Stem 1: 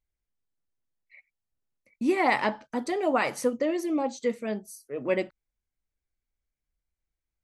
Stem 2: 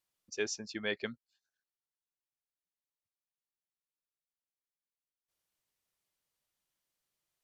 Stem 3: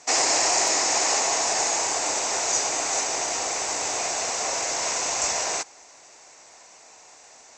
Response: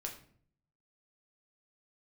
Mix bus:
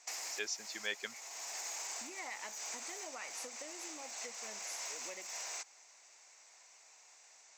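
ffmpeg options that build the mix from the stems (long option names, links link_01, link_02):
-filter_complex "[0:a]volume=-6dB[link_01];[1:a]volume=0dB,asplit=2[link_02][link_03];[2:a]aeval=exprs='clip(val(0),-1,0.0794)':channel_layout=same,alimiter=limit=-17.5dB:level=0:latency=1:release=22,volume=-10.5dB[link_04];[link_03]apad=whole_len=334246[link_05];[link_04][link_05]sidechaincompress=threshold=-45dB:ratio=8:attack=22:release=609[link_06];[link_01][link_06]amix=inputs=2:normalize=0,equalizer=frequency=2200:width=4.2:gain=3,acompressor=threshold=-38dB:ratio=6,volume=0dB[link_07];[link_02][link_07]amix=inputs=2:normalize=0,highpass=frequency=1400:poles=1"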